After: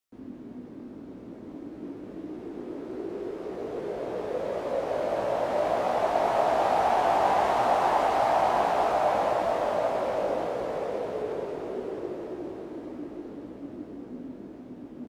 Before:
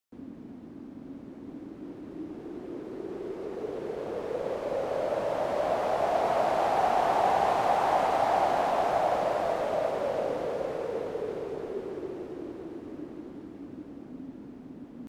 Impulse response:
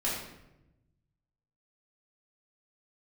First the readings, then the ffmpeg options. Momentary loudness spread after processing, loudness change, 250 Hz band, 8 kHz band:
19 LU, +1.5 dB, +2.0 dB, +1.5 dB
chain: -filter_complex "[0:a]flanger=delay=16:depth=4.1:speed=1.7,asplit=9[a][b][c][d][e][f][g][h][i];[b]adelay=131,afreqshift=69,volume=-9.5dB[j];[c]adelay=262,afreqshift=138,volume=-13.4dB[k];[d]adelay=393,afreqshift=207,volume=-17.3dB[l];[e]adelay=524,afreqshift=276,volume=-21.1dB[m];[f]adelay=655,afreqshift=345,volume=-25dB[n];[g]adelay=786,afreqshift=414,volume=-28.9dB[o];[h]adelay=917,afreqshift=483,volume=-32.8dB[p];[i]adelay=1048,afreqshift=552,volume=-36.6dB[q];[a][j][k][l][m][n][o][p][q]amix=inputs=9:normalize=0,asplit=2[r][s];[1:a]atrim=start_sample=2205[t];[s][t]afir=irnorm=-1:irlink=0,volume=-16.5dB[u];[r][u]amix=inputs=2:normalize=0,volume=2.5dB"

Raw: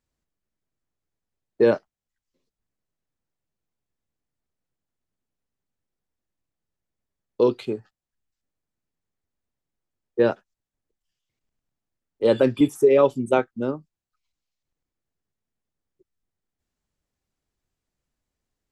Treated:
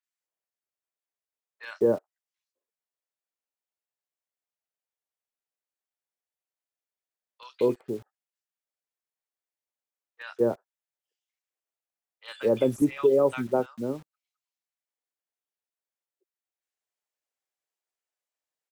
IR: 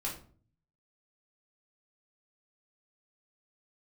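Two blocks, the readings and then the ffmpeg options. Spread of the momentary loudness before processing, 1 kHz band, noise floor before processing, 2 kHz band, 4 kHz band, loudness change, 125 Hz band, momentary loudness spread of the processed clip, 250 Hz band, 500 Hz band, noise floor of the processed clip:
16 LU, -6.5 dB, under -85 dBFS, -6.5 dB, -6.5 dB, -5.0 dB, -4.5 dB, 20 LU, -4.5 dB, -5.0 dB, under -85 dBFS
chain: -filter_complex "[0:a]acrossover=split=1200|4400[a][b][c];[c]adelay=30[d];[a]adelay=210[e];[e][b][d]amix=inputs=3:normalize=0,acrossover=split=480|3600[f][g][h];[f]acrusher=bits=7:mix=0:aa=0.000001[i];[i][g][h]amix=inputs=3:normalize=0,volume=-4.5dB"

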